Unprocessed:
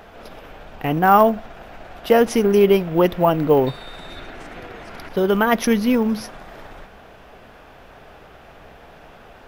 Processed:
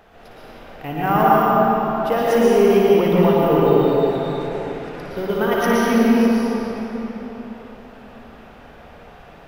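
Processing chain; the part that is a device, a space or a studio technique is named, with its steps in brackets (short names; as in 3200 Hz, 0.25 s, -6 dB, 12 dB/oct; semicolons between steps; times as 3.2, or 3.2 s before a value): tunnel (flutter echo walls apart 9.8 m, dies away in 0.42 s; reverb RT60 3.9 s, pre-delay 0.108 s, DRR -7 dB); gain -7.5 dB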